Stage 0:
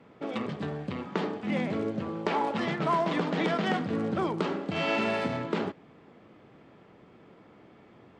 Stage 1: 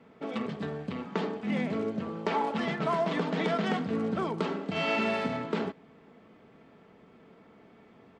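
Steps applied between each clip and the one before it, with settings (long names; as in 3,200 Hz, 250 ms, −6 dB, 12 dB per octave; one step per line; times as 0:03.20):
comb filter 4.5 ms, depth 38%
level −2 dB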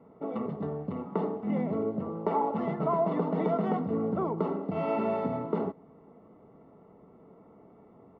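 Savitzky-Golay smoothing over 65 samples
parametric band 230 Hz −4 dB 0.21 octaves
level +2 dB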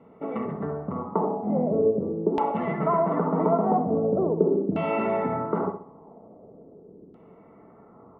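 flutter between parallel walls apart 11.3 metres, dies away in 0.46 s
auto-filter low-pass saw down 0.42 Hz 320–3,100 Hz
level +2.5 dB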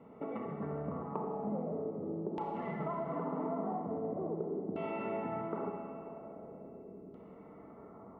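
downward compressor 4 to 1, threshold −35 dBFS, peak gain reduction 16.5 dB
four-comb reverb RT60 3 s, combs from 27 ms, DRR 3.5 dB
level −3 dB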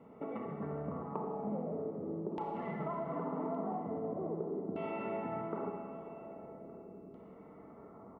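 single-tap delay 1,167 ms −20.5 dB
level −1 dB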